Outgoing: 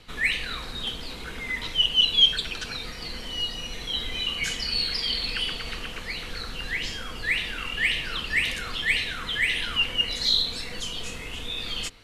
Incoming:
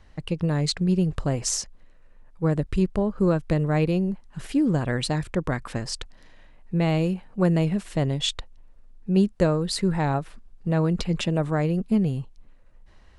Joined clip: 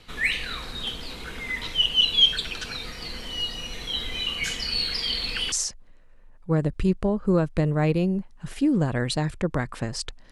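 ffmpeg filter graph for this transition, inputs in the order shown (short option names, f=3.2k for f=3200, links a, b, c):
-filter_complex "[0:a]apad=whole_dur=10.31,atrim=end=10.31,atrim=end=5.522[a];[1:a]atrim=start=1.448:end=6.24[b];[a][b]acrossfade=d=0.004:c1=hsin:c2=hsin"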